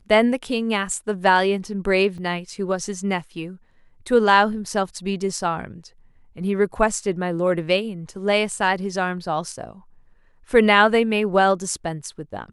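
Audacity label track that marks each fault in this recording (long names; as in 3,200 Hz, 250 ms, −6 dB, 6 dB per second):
2.180000	2.180000	drop-out 4.4 ms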